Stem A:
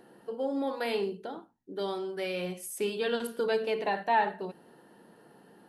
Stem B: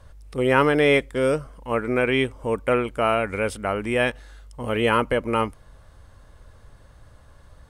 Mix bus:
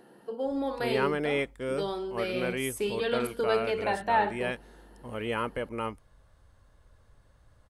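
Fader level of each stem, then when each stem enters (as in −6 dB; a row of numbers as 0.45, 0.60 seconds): +0.5, −11.0 decibels; 0.00, 0.45 seconds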